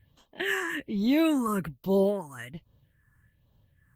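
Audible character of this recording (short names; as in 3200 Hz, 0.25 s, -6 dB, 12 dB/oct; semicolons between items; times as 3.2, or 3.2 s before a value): tremolo triangle 2.6 Hz, depth 45%; phasing stages 4, 1.2 Hz, lowest notch 590–1800 Hz; Opus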